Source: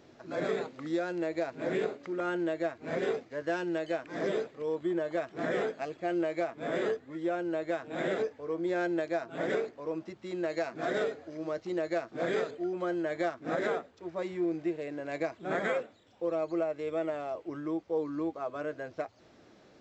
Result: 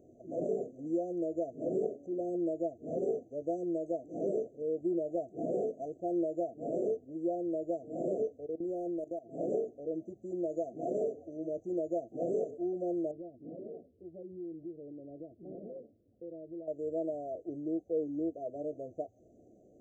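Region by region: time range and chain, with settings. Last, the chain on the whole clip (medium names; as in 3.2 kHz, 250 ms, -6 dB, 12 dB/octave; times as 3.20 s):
8.46–9.31 s: level held to a coarse grid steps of 17 dB + hard clipper -28 dBFS
13.11–16.68 s: Gaussian low-pass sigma 17 samples + compression 2:1, threshold -44 dBFS
whole clip: fifteen-band graphic EQ 160 Hz -4 dB, 1 kHz -11 dB, 6.3 kHz -4 dB; FFT band-reject 760–5900 Hz; treble shelf 5.8 kHz -9 dB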